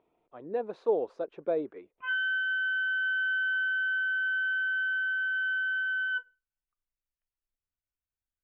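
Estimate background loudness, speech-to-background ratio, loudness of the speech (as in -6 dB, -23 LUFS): -28.5 LUFS, -4.0 dB, -32.5 LUFS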